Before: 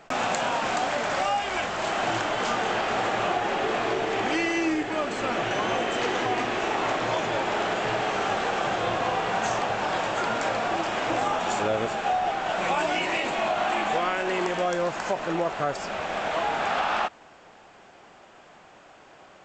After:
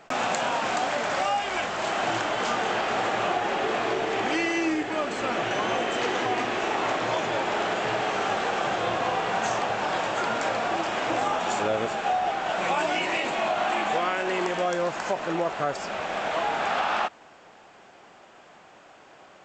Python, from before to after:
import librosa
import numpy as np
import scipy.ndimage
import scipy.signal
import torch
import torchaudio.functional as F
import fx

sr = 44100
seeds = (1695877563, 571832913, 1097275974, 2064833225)

y = fx.low_shelf(x, sr, hz=79.0, db=-8.0)